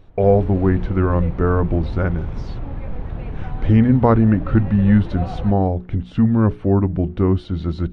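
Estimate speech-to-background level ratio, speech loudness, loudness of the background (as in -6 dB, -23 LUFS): 13.0 dB, -18.0 LUFS, -31.0 LUFS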